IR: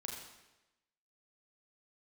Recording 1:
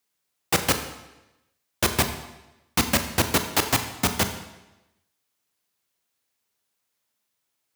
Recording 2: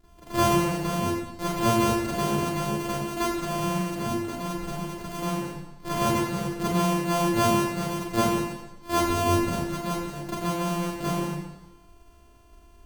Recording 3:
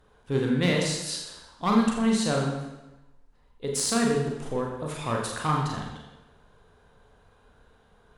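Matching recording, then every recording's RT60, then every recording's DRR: 3; 1.0, 1.0, 1.0 s; 7.0, -10.5, -1.0 dB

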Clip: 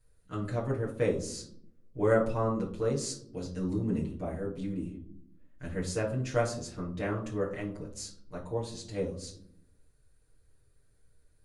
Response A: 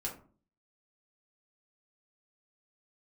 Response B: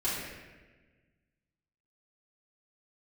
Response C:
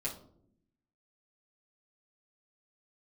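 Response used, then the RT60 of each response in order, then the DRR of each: C; 0.45, 1.3, 0.65 s; -3.5, -11.5, -6.0 dB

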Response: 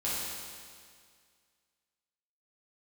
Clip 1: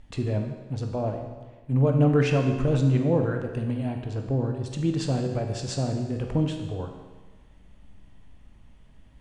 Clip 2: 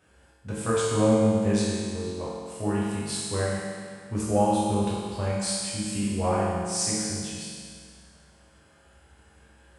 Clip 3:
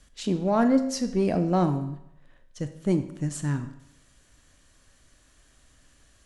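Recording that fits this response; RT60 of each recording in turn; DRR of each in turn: 2; 1.3, 2.0, 0.80 s; 3.0, -9.0, 8.5 dB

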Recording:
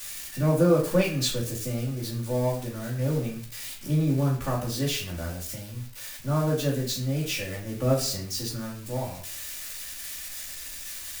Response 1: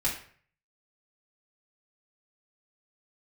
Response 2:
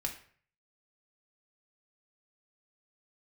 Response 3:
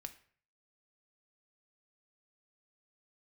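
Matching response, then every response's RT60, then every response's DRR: 1; 0.50, 0.50, 0.50 s; -8.0, 0.5, 7.0 dB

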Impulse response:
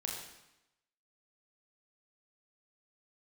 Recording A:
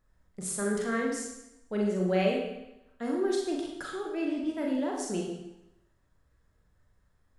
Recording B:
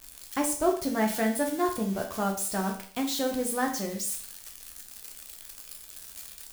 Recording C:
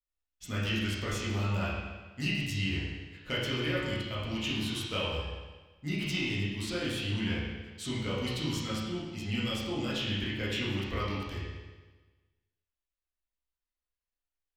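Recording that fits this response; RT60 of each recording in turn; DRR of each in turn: A; 0.90, 0.45, 1.3 s; -1.5, 1.5, -8.5 dB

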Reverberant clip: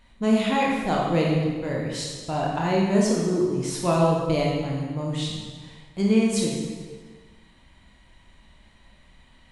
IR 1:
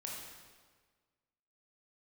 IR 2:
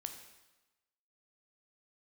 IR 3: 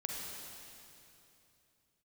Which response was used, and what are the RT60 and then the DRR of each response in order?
1; 1.5, 1.1, 2.9 s; -3.0, 5.5, -1.5 dB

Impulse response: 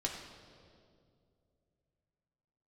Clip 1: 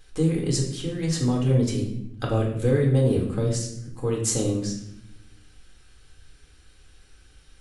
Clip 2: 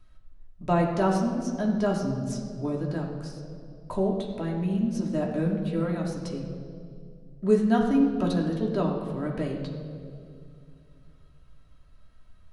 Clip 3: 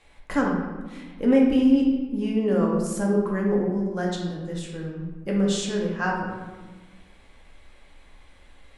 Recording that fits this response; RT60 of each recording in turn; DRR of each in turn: 2; 0.75, 2.4, 1.3 s; -2.0, -1.5, -3.0 dB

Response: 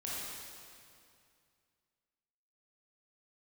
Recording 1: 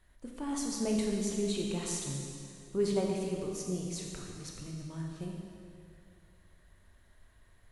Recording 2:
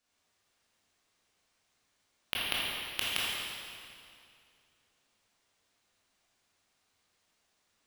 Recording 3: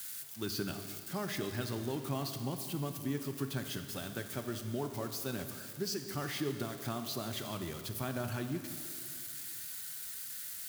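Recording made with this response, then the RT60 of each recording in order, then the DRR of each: 2; 2.4, 2.4, 2.4 s; -1.0, -7.5, 6.5 dB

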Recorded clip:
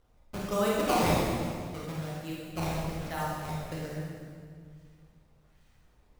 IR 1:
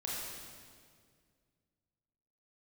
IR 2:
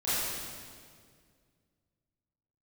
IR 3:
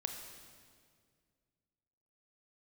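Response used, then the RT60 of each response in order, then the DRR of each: 1; 2.0, 2.0, 2.0 s; -5.5, -14.5, 4.0 dB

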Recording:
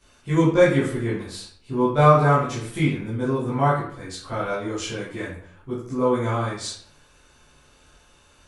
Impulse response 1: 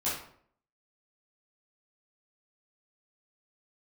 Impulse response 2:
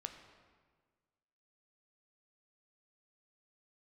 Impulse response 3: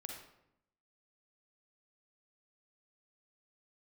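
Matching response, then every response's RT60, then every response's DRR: 1; 0.60, 1.5, 0.80 s; -10.5, 5.5, 0.5 dB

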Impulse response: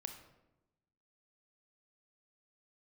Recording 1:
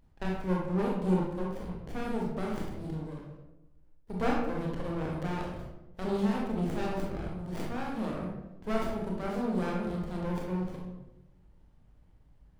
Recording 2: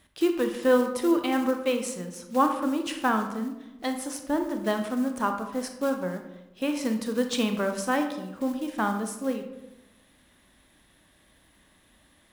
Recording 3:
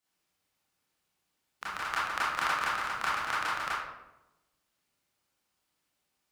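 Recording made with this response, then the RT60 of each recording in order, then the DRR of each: 2; 0.95, 0.95, 0.95 s; -3.0, 5.5, -9.0 dB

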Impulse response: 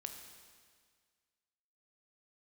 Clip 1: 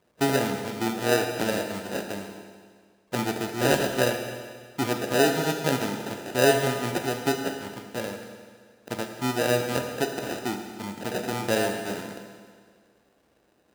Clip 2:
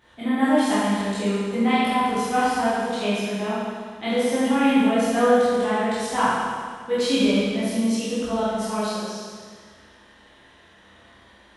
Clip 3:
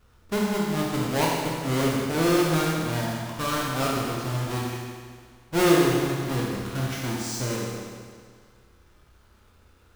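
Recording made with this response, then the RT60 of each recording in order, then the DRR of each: 1; 1.8, 1.8, 1.8 s; 4.5, -11.5, -3.5 dB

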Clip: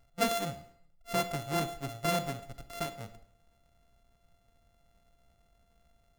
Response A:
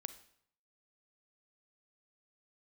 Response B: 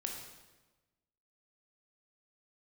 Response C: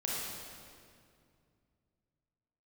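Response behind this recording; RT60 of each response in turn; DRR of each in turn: A; 0.65, 1.2, 2.3 s; 11.5, 1.0, -5.5 dB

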